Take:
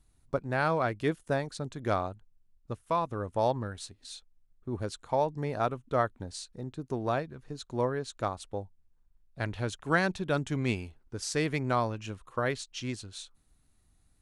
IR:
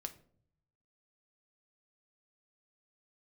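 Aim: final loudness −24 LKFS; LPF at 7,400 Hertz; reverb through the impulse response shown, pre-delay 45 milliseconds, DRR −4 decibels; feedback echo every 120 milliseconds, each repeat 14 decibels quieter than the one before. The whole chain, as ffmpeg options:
-filter_complex "[0:a]lowpass=7400,aecho=1:1:120|240:0.2|0.0399,asplit=2[link_01][link_02];[1:a]atrim=start_sample=2205,adelay=45[link_03];[link_02][link_03]afir=irnorm=-1:irlink=0,volume=7dB[link_04];[link_01][link_04]amix=inputs=2:normalize=0,volume=2.5dB"

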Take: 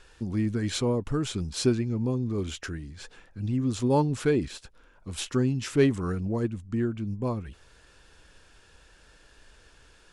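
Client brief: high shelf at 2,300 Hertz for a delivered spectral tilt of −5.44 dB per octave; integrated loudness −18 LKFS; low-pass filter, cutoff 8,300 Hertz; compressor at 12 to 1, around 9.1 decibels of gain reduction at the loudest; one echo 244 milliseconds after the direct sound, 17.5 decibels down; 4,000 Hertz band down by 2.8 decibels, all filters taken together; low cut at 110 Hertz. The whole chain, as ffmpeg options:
ffmpeg -i in.wav -af "highpass=110,lowpass=8300,highshelf=frequency=2300:gain=4.5,equalizer=frequency=4000:width_type=o:gain=-7.5,acompressor=threshold=-26dB:ratio=12,aecho=1:1:244:0.133,volume=15dB" out.wav

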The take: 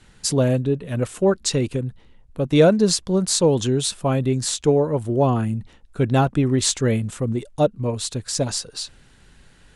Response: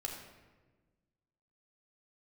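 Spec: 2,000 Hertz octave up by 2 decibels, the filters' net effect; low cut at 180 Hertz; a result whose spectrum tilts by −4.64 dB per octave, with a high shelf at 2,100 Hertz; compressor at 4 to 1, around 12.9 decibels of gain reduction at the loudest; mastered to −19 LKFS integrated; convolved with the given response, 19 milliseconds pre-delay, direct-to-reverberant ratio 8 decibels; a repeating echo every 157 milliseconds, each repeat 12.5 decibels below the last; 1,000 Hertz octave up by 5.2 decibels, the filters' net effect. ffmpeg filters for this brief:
-filter_complex "[0:a]highpass=180,equalizer=frequency=1000:width_type=o:gain=8,equalizer=frequency=2000:width_type=o:gain=3.5,highshelf=frequency=2100:gain=-7,acompressor=threshold=-24dB:ratio=4,aecho=1:1:157|314|471:0.237|0.0569|0.0137,asplit=2[link_01][link_02];[1:a]atrim=start_sample=2205,adelay=19[link_03];[link_02][link_03]afir=irnorm=-1:irlink=0,volume=-8dB[link_04];[link_01][link_04]amix=inputs=2:normalize=0,volume=9dB"

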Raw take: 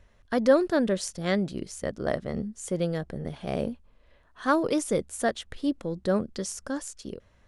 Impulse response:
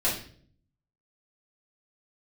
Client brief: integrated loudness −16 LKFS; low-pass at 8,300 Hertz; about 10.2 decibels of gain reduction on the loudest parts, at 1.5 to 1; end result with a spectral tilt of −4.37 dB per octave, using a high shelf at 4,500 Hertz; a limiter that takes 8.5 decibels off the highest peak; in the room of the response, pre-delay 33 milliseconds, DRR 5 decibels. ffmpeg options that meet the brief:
-filter_complex "[0:a]lowpass=8300,highshelf=frequency=4500:gain=8.5,acompressor=threshold=-43dB:ratio=1.5,alimiter=level_in=2dB:limit=-24dB:level=0:latency=1,volume=-2dB,asplit=2[link_01][link_02];[1:a]atrim=start_sample=2205,adelay=33[link_03];[link_02][link_03]afir=irnorm=-1:irlink=0,volume=-15.5dB[link_04];[link_01][link_04]amix=inputs=2:normalize=0,volume=20.5dB"

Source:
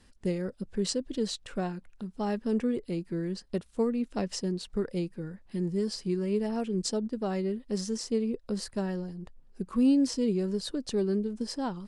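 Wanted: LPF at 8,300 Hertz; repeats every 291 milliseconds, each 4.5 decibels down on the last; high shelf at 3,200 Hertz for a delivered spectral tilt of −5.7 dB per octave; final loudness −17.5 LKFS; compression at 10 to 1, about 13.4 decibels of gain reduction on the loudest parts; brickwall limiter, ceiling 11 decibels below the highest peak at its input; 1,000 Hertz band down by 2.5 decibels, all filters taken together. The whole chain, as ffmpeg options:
ffmpeg -i in.wav -af "lowpass=8300,equalizer=frequency=1000:width_type=o:gain=-3,highshelf=frequency=3200:gain=-5.5,acompressor=threshold=-34dB:ratio=10,alimiter=level_in=12dB:limit=-24dB:level=0:latency=1,volume=-12dB,aecho=1:1:291|582|873|1164|1455|1746|2037|2328|2619:0.596|0.357|0.214|0.129|0.0772|0.0463|0.0278|0.0167|0.01,volume=25dB" out.wav

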